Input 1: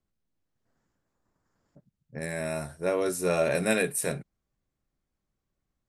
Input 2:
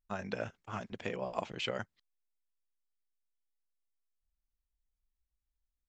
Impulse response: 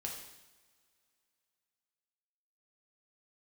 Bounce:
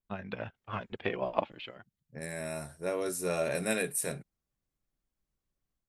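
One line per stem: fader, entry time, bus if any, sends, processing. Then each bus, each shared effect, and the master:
−12.0 dB, 0.00 s, no send, no processing
+1.0 dB, 0.00 s, no send, Butterworth low-pass 3,900 Hz 36 dB per octave; phase shifter 0.34 Hz, delay 3.6 ms, feedback 36%; expander for the loud parts 1.5 to 1, over −59 dBFS; automatic ducking −18 dB, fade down 0.35 s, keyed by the first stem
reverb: not used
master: high-shelf EQ 5,400 Hz +5 dB; automatic gain control gain up to 6 dB

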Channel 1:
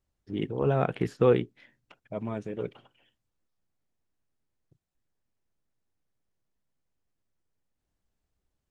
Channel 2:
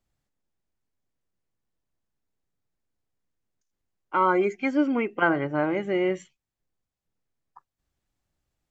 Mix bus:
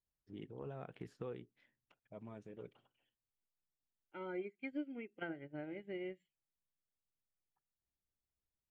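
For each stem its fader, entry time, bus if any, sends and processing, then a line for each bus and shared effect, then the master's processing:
−16.5 dB, 0.00 s, no send, no processing
−0.5 dB, 0.00 s, no send, phaser with its sweep stopped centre 2,600 Hz, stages 4; expander for the loud parts 2.5 to 1, over −35 dBFS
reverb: not used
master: downward compressor 3 to 1, threshold −44 dBFS, peak gain reduction 17.5 dB

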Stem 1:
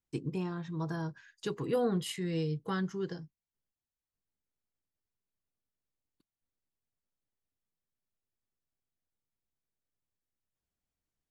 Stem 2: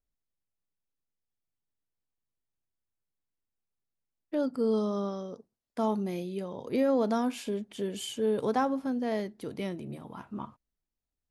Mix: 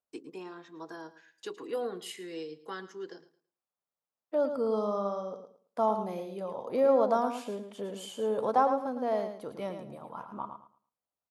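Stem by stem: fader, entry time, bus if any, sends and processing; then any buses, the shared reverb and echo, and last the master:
−3.0 dB, 0.00 s, no send, echo send −16 dB, high-pass filter 290 Hz 24 dB per octave; noise gate with hold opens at −52 dBFS
−6.5 dB, 0.00 s, no send, echo send −8.5 dB, flat-topped bell 820 Hz +11 dB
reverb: not used
echo: repeating echo 110 ms, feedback 22%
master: high-pass filter 120 Hz

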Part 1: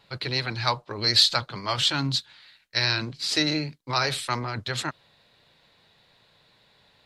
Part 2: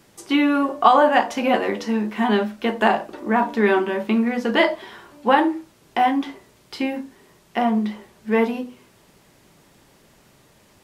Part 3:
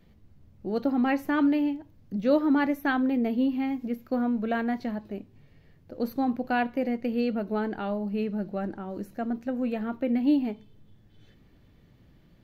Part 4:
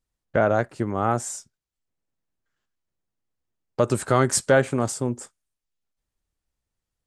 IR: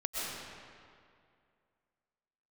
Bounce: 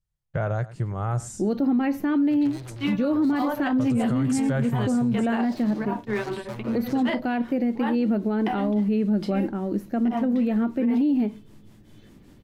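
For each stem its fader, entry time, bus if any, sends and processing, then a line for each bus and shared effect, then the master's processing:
−7.5 dB, 2.20 s, no send, no echo send, spectral tilt −3 dB per octave; transient designer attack +8 dB, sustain −2 dB; hard clipping −29.5 dBFS, distortion −3 dB; automatic ducking −13 dB, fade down 0.55 s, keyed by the fourth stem
−6.0 dB, 2.50 s, no send, no echo send, tremolo along a rectified sine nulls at 5.2 Hz
+3.0 dB, 0.75 s, no send, no echo send, hollow resonant body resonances 220/320 Hz, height 7 dB, ringing for 25 ms
−7.0 dB, 0.00 s, no send, echo send −19 dB, low shelf with overshoot 190 Hz +8 dB, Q 3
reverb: not used
echo: single-tap delay 104 ms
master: brickwall limiter −16.5 dBFS, peak gain reduction 11.5 dB

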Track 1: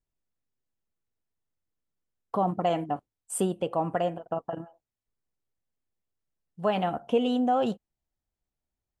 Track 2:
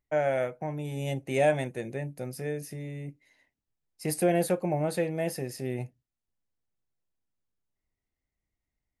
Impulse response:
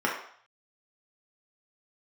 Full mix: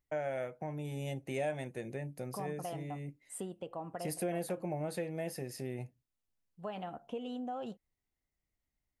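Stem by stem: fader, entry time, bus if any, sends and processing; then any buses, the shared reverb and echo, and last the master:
−12.0 dB, 0.00 s, no send, no processing
−2.5 dB, 0.00 s, no send, no processing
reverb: not used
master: downward compressor 2 to 1, threshold −39 dBFS, peak gain reduction 10 dB

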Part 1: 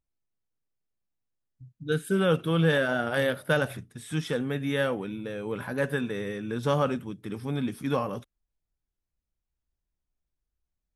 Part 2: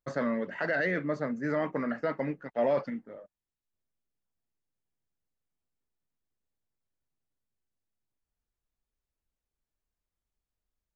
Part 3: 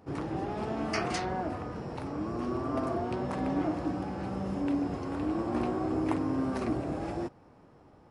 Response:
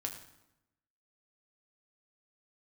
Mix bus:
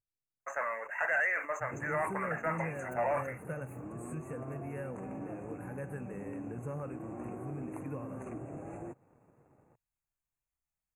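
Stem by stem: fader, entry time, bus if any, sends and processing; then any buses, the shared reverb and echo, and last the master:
−12.5 dB, 0.00 s, bus A, no send, no processing
0.0 dB, 0.40 s, no bus, no send, Chebyshev high-pass filter 770 Hz, order 3; level that may fall only so fast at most 140 dB per second
−10.0 dB, 1.65 s, bus A, no send, low-shelf EQ 130 Hz −7.5 dB
bus A: 0.0 dB, graphic EQ with 10 bands 125 Hz +10 dB, 500 Hz +4 dB, 4,000 Hz −3 dB, 8,000 Hz +7 dB; downward compressor 2.5 to 1, threshold −46 dBFS, peak gain reduction 13.5 dB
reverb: not used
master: leveller curve on the samples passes 1; linear-phase brick-wall band-stop 2,800–6,100 Hz

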